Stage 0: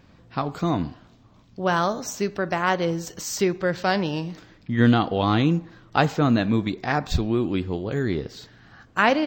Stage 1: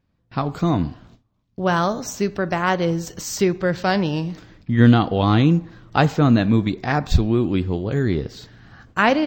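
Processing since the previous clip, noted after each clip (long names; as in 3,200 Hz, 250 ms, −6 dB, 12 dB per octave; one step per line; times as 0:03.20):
noise gate with hold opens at −41 dBFS
low-shelf EQ 190 Hz +7 dB
level +1.5 dB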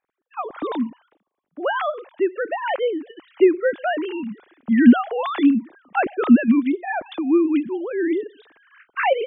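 three sine waves on the formant tracks
level −1 dB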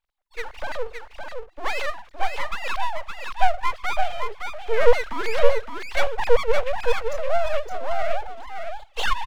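full-wave rectification
single-tap delay 565 ms −5.5 dB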